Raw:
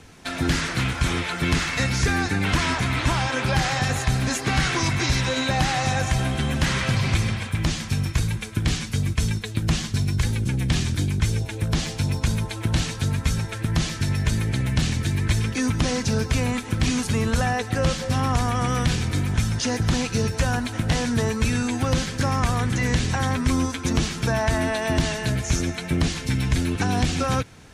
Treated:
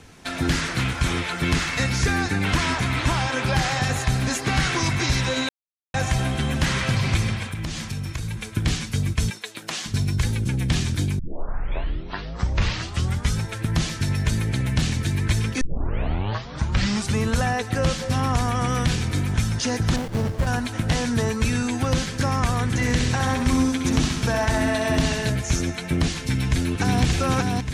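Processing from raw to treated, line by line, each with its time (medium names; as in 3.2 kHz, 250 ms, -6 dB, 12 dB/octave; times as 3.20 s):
5.49–5.94 s: mute
7.44–8.51 s: compression, threshold -25 dBFS
9.30–9.86 s: high-pass 510 Hz
11.19 s: tape start 2.24 s
15.61 s: tape start 1.60 s
19.96–20.47 s: sliding maximum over 33 samples
22.66–25.30 s: feedback delay 65 ms, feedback 60%, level -7 dB
26.23–27.02 s: echo throw 580 ms, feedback 55%, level -2.5 dB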